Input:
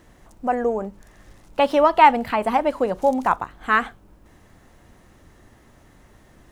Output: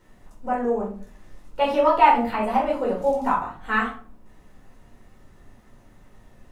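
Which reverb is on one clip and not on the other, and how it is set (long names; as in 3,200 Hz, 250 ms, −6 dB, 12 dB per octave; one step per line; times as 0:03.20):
rectangular room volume 380 cubic metres, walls furnished, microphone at 4.6 metres
level −11 dB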